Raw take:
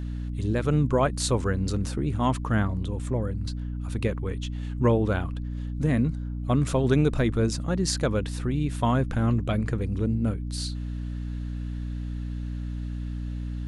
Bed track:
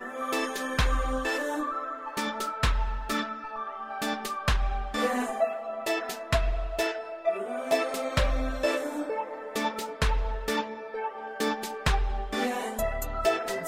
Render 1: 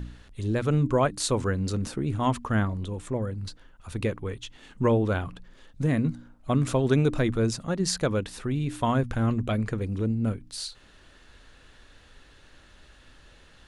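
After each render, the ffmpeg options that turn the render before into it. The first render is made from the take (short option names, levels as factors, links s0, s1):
-af "bandreject=f=60:t=h:w=4,bandreject=f=120:t=h:w=4,bandreject=f=180:t=h:w=4,bandreject=f=240:t=h:w=4,bandreject=f=300:t=h:w=4"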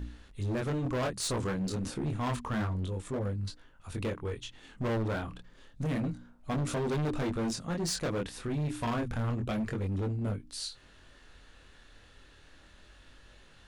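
-af "flanger=delay=20:depth=6.5:speed=0.29,asoftclip=type=hard:threshold=0.0376"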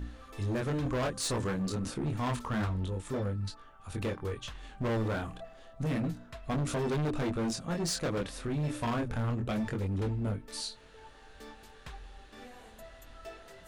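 -filter_complex "[1:a]volume=0.0841[s0];[0:a][s0]amix=inputs=2:normalize=0"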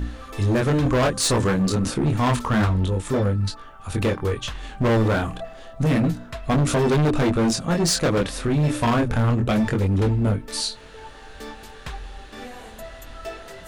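-af "volume=3.98"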